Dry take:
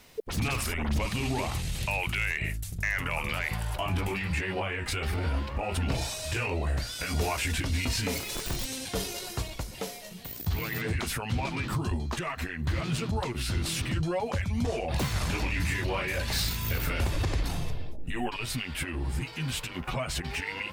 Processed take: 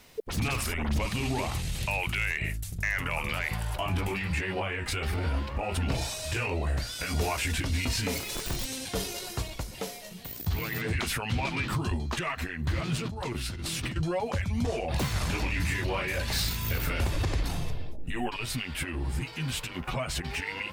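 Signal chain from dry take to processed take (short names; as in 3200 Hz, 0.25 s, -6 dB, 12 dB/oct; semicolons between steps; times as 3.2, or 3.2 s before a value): 10.9–12.39 dynamic EQ 2600 Hz, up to +4 dB, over -45 dBFS, Q 0.76; 12.98–13.96 negative-ratio compressor -34 dBFS, ratio -1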